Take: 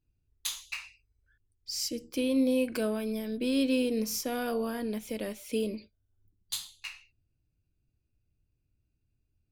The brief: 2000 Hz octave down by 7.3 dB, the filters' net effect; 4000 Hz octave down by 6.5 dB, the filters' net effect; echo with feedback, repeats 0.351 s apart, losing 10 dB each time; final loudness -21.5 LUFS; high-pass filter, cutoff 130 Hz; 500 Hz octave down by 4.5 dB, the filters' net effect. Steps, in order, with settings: HPF 130 Hz; bell 500 Hz -4.5 dB; bell 2000 Hz -8 dB; bell 4000 Hz -6.5 dB; feedback echo 0.351 s, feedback 32%, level -10 dB; gain +12 dB

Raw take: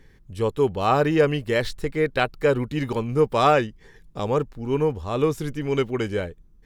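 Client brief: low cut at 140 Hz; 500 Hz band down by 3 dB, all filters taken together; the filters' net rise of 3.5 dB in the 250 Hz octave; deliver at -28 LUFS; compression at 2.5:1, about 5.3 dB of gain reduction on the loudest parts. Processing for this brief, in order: HPF 140 Hz; bell 250 Hz +7 dB; bell 500 Hz -5.5 dB; compressor 2.5:1, threshold -23 dBFS; gain -0.5 dB

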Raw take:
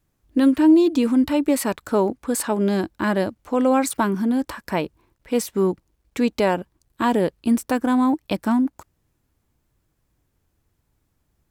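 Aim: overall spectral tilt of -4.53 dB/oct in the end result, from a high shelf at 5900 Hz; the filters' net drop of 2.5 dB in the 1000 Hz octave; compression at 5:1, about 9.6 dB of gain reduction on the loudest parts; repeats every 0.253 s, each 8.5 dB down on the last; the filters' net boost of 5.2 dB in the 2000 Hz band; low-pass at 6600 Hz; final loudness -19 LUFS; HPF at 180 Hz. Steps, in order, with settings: HPF 180 Hz; LPF 6600 Hz; bell 1000 Hz -5 dB; bell 2000 Hz +8 dB; high shelf 5900 Hz +5 dB; compressor 5:1, threshold -22 dBFS; feedback echo 0.253 s, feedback 38%, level -8.5 dB; gain +8 dB

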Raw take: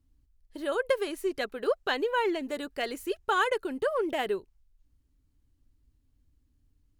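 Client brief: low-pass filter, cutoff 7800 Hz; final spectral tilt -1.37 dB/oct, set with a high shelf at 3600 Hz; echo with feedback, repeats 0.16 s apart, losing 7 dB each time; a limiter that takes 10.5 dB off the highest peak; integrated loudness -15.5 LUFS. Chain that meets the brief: LPF 7800 Hz; high shelf 3600 Hz -3.5 dB; limiter -24.5 dBFS; feedback echo 0.16 s, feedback 45%, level -7 dB; gain +18 dB

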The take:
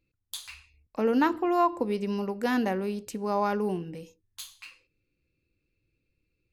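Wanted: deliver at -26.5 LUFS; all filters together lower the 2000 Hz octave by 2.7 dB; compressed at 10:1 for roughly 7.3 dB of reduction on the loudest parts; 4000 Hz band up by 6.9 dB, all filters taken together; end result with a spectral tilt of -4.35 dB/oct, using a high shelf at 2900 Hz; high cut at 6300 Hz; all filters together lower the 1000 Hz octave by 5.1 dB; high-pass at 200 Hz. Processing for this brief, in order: HPF 200 Hz; LPF 6300 Hz; bell 1000 Hz -6.5 dB; bell 2000 Hz -4.5 dB; high shelf 2900 Hz +5 dB; bell 4000 Hz +7 dB; compressor 10:1, threshold -29 dBFS; gain +9.5 dB

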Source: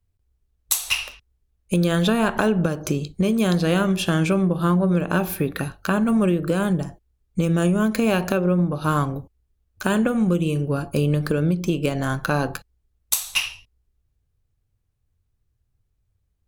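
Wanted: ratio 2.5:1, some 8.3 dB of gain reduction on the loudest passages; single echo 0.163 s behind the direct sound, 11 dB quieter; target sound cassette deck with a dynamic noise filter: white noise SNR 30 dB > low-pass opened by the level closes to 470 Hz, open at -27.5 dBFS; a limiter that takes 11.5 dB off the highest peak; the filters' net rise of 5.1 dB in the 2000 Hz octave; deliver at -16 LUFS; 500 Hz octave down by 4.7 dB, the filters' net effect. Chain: bell 500 Hz -6.5 dB; bell 2000 Hz +8 dB; compressor 2.5:1, threshold -26 dBFS; limiter -19 dBFS; echo 0.163 s -11 dB; white noise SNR 30 dB; low-pass opened by the level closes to 470 Hz, open at -27.5 dBFS; gain +13 dB

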